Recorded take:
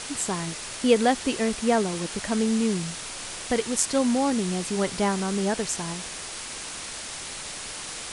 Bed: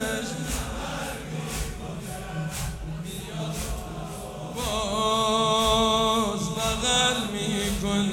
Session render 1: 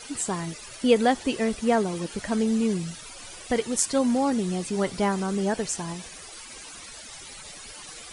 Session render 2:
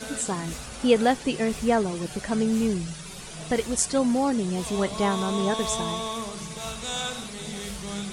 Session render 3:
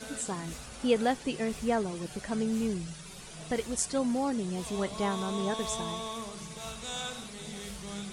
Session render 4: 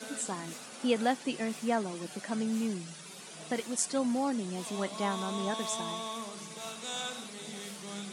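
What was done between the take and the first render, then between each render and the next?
denoiser 14 dB, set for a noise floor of -37 dBFS
add bed -9 dB
gain -6.5 dB
dynamic EQ 430 Hz, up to -6 dB, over -48 dBFS, Q 4; HPF 190 Hz 24 dB/oct

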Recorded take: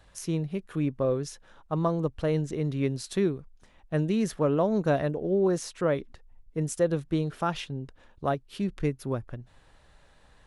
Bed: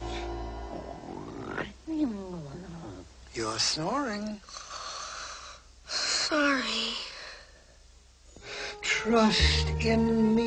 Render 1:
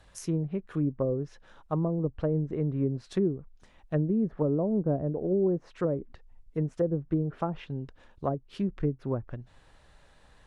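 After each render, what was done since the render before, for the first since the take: treble ducked by the level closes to 460 Hz, closed at -22.5 dBFS; dynamic EQ 3600 Hz, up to -4 dB, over -57 dBFS, Q 1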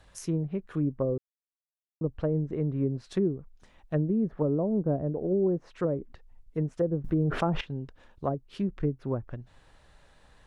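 1.18–2.01 mute; 7.04–7.61 fast leveller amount 70%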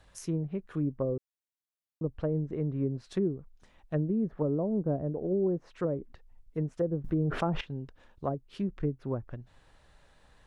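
gain -2.5 dB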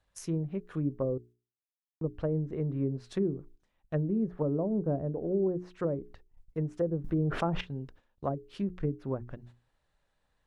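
gate -52 dBFS, range -15 dB; notches 60/120/180/240/300/360/420 Hz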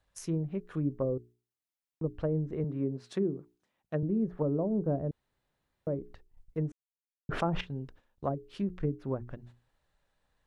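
2.64–4.03 HPF 150 Hz; 5.11–5.87 room tone; 6.72–7.29 mute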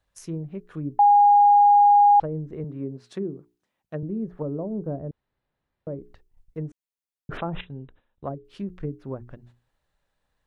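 0.99–2.2 bleep 819 Hz -11.5 dBFS; 4.89–5.99 air absorption 170 m; 7.37–8.45 brick-wall FIR low-pass 4000 Hz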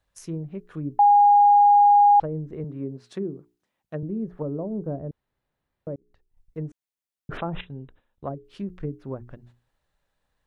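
5.96–6.62 fade in

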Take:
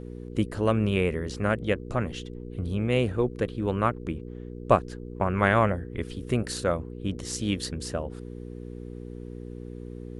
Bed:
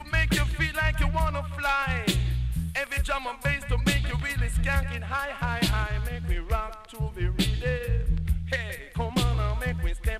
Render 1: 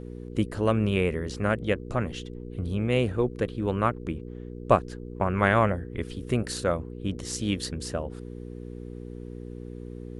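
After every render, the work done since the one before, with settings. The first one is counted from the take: nothing audible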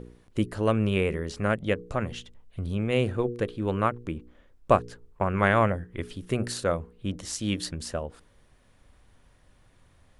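de-hum 60 Hz, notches 8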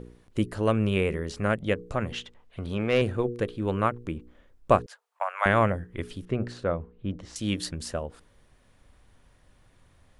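2.12–3.02 overdrive pedal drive 14 dB, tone 2400 Hz, clips at -11 dBFS; 4.86–5.46 steep high-pass 620 Hz 48 dB/oct; 6.25–7.36 tape spacing loss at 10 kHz 25 dB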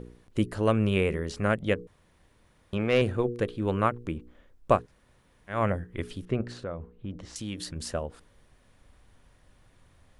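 1.87–2.73 room tone; 4.8–5.59 room tone, crossfade 0.24 s; 6.41–7.76 compressor 2.5:1, threshold -34 dBFS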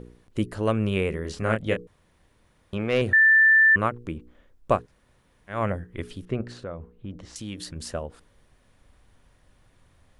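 1.22–1.77 doubler 27 ms -5 dB; 3.13–3.76 bleep 1770 Hz -13 dBFS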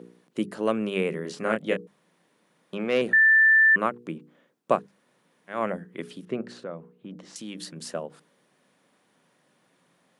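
Chebyshev high-pass 160 Hz, order 4; notches 50/100/150/200 Hz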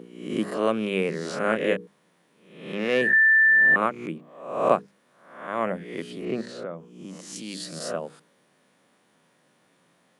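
spectral swells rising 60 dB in 0.71 s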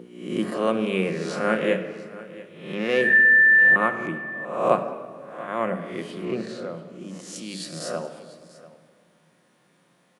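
echo 0.69 s -19 dB; shoebox room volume 2500 m³, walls mixed, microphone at 0.91 m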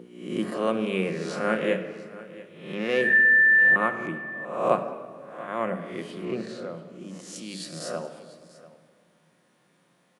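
gain -2.5 dB

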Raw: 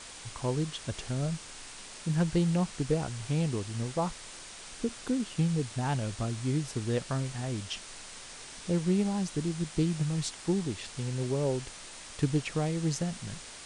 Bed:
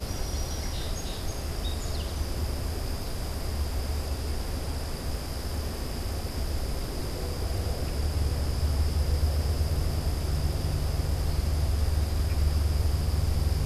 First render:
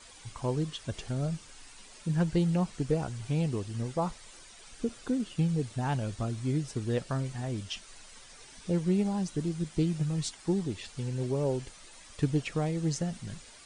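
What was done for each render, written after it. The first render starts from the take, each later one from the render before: denoiser 10 dB, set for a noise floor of -46 dBFS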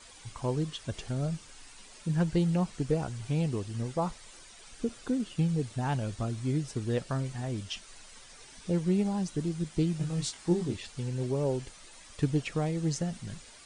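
9.98–10.77 doubler 23 ms -4.5 dB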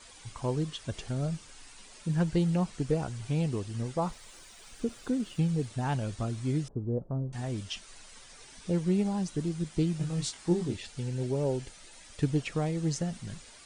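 4.04–5.66 sample gate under -58.5 dBFS; 6.68–7.33 Gaussian blur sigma 11 samples; 10.69–12.28 notch 1100 Hz, Q 6.3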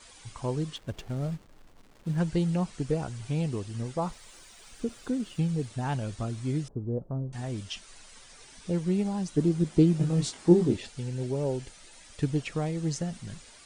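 0.76–2.18 backlash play -41 dBFS; 9.37–10.89 bell 330 Hz +9 dB 2.8 oct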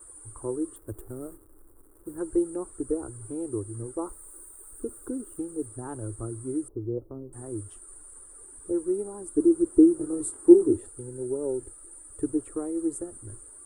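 EQ curve 110 Hz 0 dB, 160 Hz -29 dB, 330 Hz +9 dB, 690 Hz -10 dB, 1300 Hz -3 dB, 2500 Hz -28 dB, 3800 Hz -26 dB, 5800 Hz -29 dB, 8800 Hz +13 dB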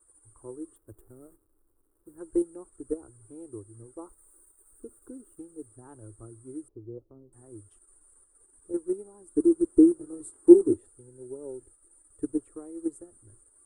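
in parallel at -1.5 dB: level quantiser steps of 24 dB; on the sum: upward expander 1.5:1, over -40 dBFS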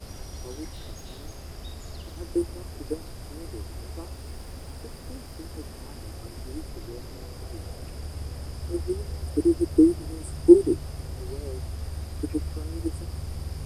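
add bed -8 dB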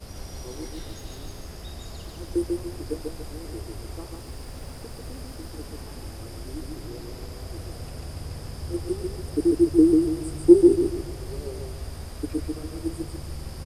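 feedback echo 0.143 s, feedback 36%, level -3 dB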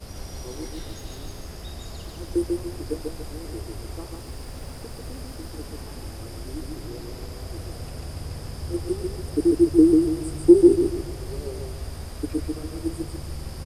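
gain +1.5 dB; limiter -3 dBFS, peak gain reduction 2 dB

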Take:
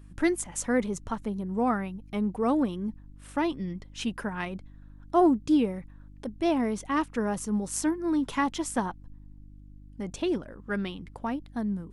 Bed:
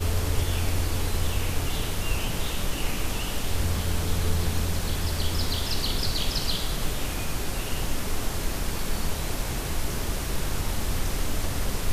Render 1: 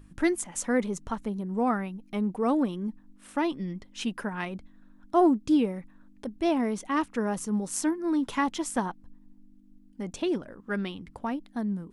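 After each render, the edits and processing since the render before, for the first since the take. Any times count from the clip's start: de-hum 50 Hz, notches 3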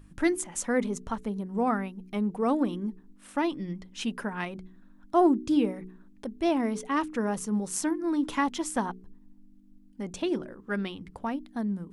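de-hum 61.71 Hz, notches 7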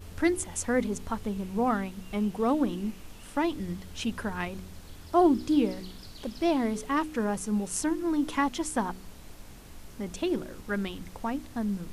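add bed -19.5 dB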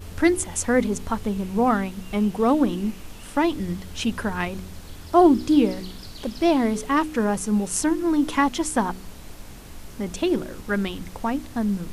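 gain +6.5 dB

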